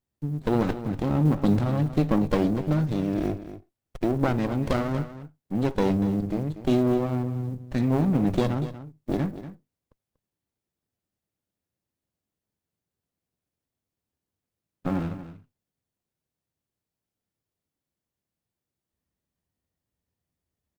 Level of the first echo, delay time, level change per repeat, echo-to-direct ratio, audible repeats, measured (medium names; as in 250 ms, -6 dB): -13.0 dB, 239 ms, no regular repeats, -13.0 dB, 1